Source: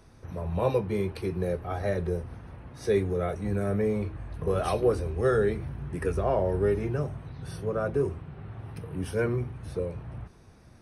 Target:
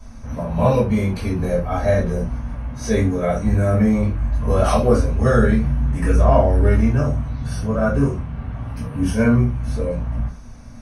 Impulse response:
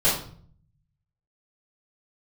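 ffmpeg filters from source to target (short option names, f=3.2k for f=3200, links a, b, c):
-filter_complex "[0:a]equalizer=f=400:t=o:w=0.33:g=-12,equalizer=f=800:t=o:w=0.33:g=-5,equalizer=f=4k:t=o:w=0.33:g=-4,equalizer=f=6.3k:t=o:w=0.33:g=7[a];[1:a]atrim=start_sample=2205,afade=t=out:st=0.18:d=0.01,atrim=end_sample=8379,asetrate=61740,aresample=44100[b];[a][b]afir=irnorm=-1:irlink=0,volume=-1.5dB"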